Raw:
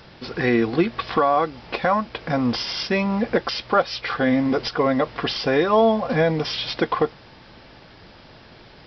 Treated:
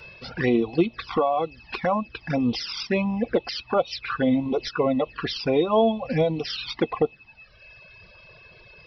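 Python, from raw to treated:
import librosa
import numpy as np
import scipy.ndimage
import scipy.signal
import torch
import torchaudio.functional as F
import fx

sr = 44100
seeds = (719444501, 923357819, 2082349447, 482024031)

y = x + 10.0 ** (-41.0 / 20.0) * np.sin(2.0 * np.pi * 2600.0 * np.arange(len(x)) / sr)
y = fx.env_flanger(y, sr, rest_ms=2.2, full_db=-17.5)
y = fx.dereverb_blind(y, sr, rt60_s=1.7)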